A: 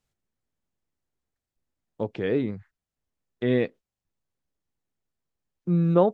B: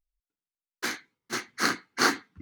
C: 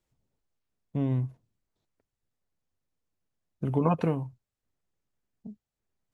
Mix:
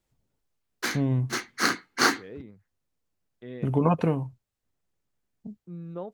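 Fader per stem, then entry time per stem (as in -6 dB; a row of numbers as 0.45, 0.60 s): -17.5, +1.5, +2.5 dB; 0.00, 0.00, 0.00 s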